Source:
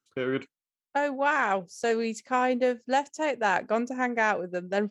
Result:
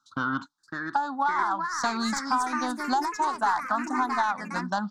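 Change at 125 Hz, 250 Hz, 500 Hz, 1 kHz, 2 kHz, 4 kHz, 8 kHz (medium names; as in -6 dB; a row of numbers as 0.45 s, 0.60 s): no reading, +0.5 dB, -11.5 dB, +3.5 dB, -1.5 dB, +3.5 dB, +5.5 dB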